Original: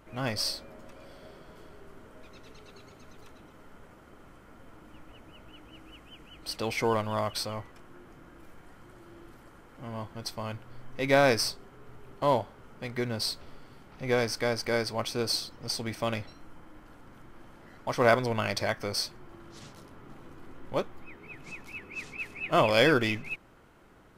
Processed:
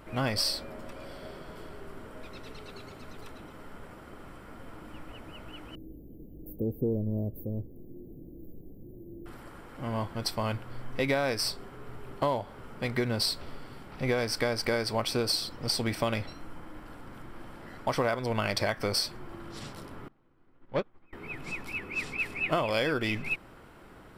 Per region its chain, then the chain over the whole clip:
5.75–9.26 inverse Chebyshev band-stop 1200–7500 Hz, stop band 60 dB + mismatched tape noise reduction encoder only
20.08–21.13 overloaded stage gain 24.5 dB + air absorption 140 m + upward expander 2.5:1, over -44 dBFS
whole clip: notch 6400 Hz, Q 6.4; compressor 16:1, threshold -30 dBFS; gain +6 dB

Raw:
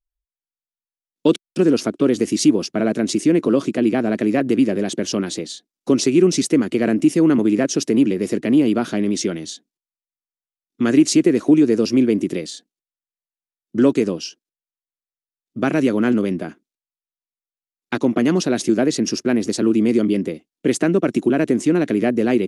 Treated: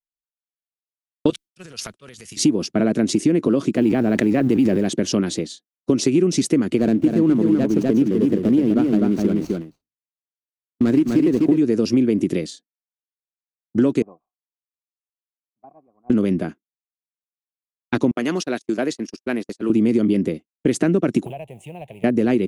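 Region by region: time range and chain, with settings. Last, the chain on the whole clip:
1.3–2.37 passive tone stack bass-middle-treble 10-0-10 + transient shaper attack +2 dB, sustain +11 dB
3.74–4.88 G.711 law mismatch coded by A + bell 9100 Hz -3 dB 0.89 oct + sustainer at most 39 dB/s
6.78–11.58 median filter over 25 samples + notches 50/100/150 Hz + echo 0.251 s -4 dB
14.02–16.1 CVSD 32 kbps + vocal tract filter a + air absorption 390 m
18.11–19.7 gate -22 dBFS, range -39 dB + HPF 760 Hz 6 dB/oct
21.25–22.04 G.711 law mismatch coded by mu + EQ curve 140 Hz 0 dB, 280 Hz -26 dB, 530 Hz -1 dB, 800 Hz +10 dB, 1400 Hz -25 dB, 2700 Hz +6 dB, 5100 Hz -19 dB, 7200 Hz -7 dB, 11000 Hz +1 dB + compressor 4:1, threshold -29 dBFS
whole clip: expander -26 dBFS; low shelf 230 Hz +8 dB; compressor, threshold -13 dBFS

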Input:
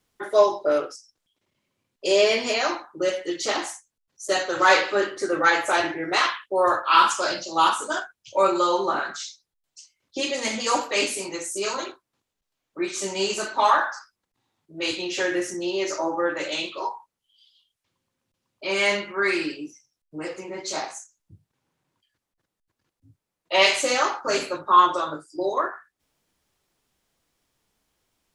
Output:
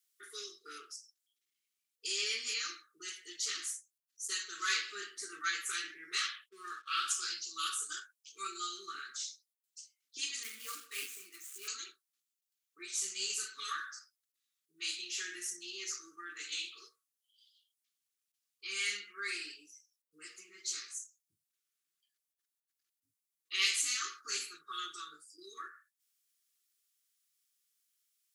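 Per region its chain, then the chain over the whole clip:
6.49–7.08 G.711 law mismatch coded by A + gate -33 dBFS, range -9 dB + air absorption 75 m
10.43–11.68 median filter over 9 samples + rippled Chebyshev high-pass 180 Hz, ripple 3 dB
whole clip: differentiator; FFT band-reject 480–1100 Hz; gain -3 dB

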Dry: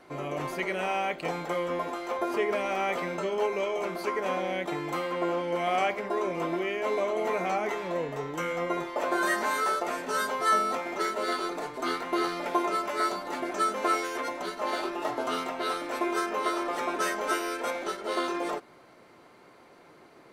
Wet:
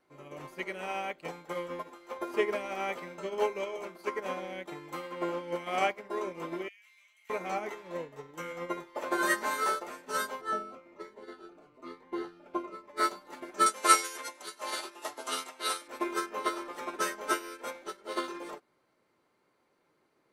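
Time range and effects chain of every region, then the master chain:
6.68–7.3 ladder high-pass 1900 Hz, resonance 45% + high shelf 6000 Hz +9.5 dB
10.4–12.96 LPF 1200 Hz 6 dB/oct + buzz 100 Hz, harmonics 30, -59 dBFS -1 dB/oct + cascading phaser falling 1.1 Hz
13.66–15.88 LPF 11000 Hz 24 dB/oct + RIAA curve recording
whole clip: high shelf 7500 Hz +5 dB; notch 700 Hz, Q 12; upward expander 2.5:1, over -37 dBFS; gain +5.5 dB

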